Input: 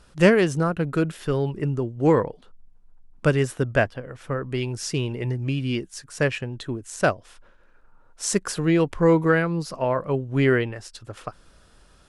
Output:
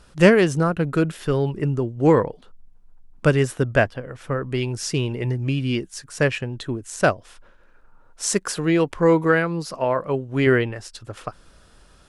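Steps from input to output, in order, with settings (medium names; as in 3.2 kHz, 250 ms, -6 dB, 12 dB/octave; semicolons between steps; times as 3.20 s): 8.29–10.47 s: bass shelf 170 Hz -7.5 dB; trim +2.5 dB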